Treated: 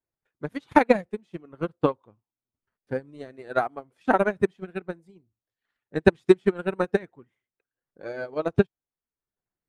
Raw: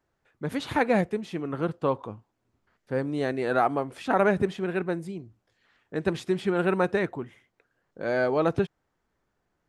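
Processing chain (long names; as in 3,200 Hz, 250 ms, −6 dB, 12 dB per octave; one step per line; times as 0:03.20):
spectral magnitudes quantised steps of 15 dB
transient designer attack +9 dB, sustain −5 dB
expander for the loud parts 2.5 to 1, over −27 dBFS
level +3.5 dB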